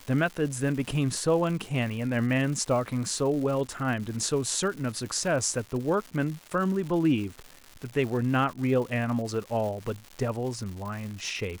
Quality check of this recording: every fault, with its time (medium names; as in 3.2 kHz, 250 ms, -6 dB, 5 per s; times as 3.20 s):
crackle 280 per s -35 dBFS